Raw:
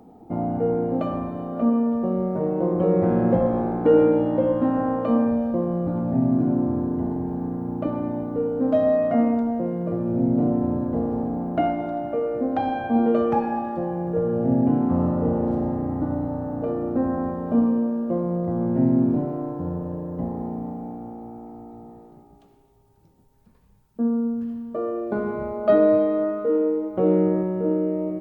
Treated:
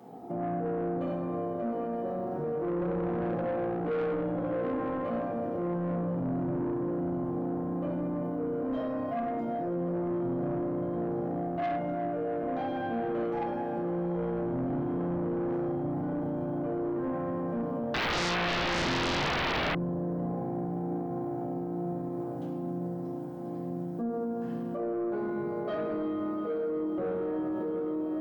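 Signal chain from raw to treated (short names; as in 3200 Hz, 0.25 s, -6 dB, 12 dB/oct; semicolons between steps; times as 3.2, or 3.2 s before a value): HPF 88 Hz 24 dB/oct; low shelf 270 Hz -9 dB; reverb RT60 0.75 s, pre-delay 5 ms, DRR -7.5 dB; dynamic EQ 1700 Hz, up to -6 dB, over -36 dBFS, Q 0.79; diffused feedback echo 0.809 s, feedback 73%, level -11.5 dB; soft clip -14.5 dBFS, distortion -13 dB; limiter -25.5 dBFS, peak gain reduction 11 dB; 17.94–19.75 sine folder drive 15 dB, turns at -25 dBFS; gain -1.5 dB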